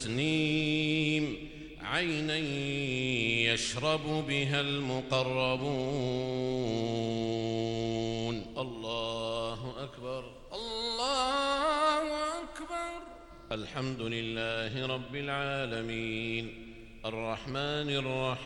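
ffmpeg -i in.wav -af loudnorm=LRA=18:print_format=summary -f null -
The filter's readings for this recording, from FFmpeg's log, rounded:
Input Integrated:    -32.5 LUFS
Input True Peak:     -13.2 dBTP
Input LRA:             4.9 LU
Input Threshold:     -42.7 LUFS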